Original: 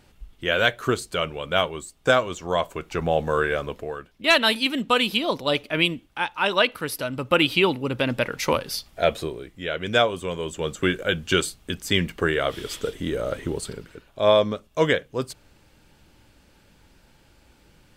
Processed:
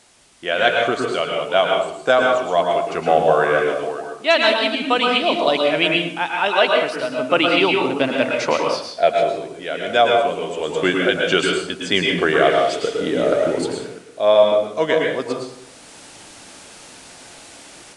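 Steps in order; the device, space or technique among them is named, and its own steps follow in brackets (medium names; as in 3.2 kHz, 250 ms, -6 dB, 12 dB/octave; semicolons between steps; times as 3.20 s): filmed off a television (band-pass 230–6400 Hz; peaking EQ 700 Hz +9 dB 0.31 oct; reverberation RT60 0.70 s, pre-delay 104 ms, DRR 0 dB; white noise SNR 29 dB; level rider; trim -1.5 dB; AAC 96 kbps 22.05 kHz)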